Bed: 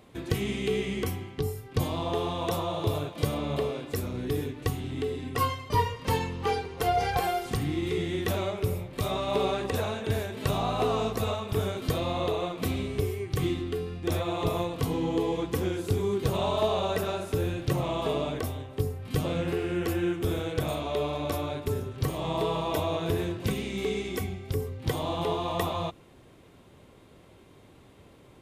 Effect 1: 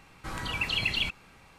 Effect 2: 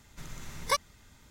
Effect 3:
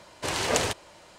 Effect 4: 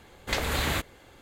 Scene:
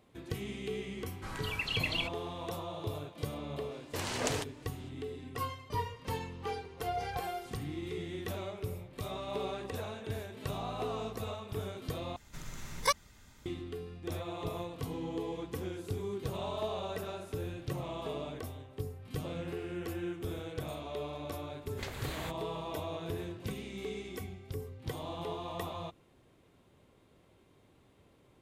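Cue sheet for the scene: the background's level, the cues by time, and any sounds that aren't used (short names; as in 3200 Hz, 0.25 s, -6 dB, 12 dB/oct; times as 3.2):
bed -10 dB
0.98 add 1 -5.5 dB
3.71 add 3 -9 dB
12.16 replace with 2 -1 dB
21.5 add 4 -14 dB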